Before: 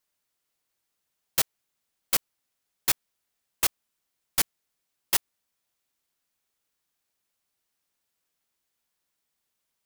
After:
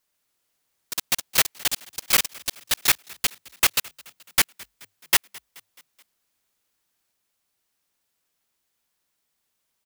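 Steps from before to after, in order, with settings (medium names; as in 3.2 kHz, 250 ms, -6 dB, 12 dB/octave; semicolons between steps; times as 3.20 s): dynamic bell 2.1 kHz, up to +7 dB, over -45 dBFS, Q 0.84; ever faster or slower copies 144 ms, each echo +6 st, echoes 3; frequency-shifting echo 214 ms, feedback 56%, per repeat +49 Hz, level -23.5 dB; trim +4 dB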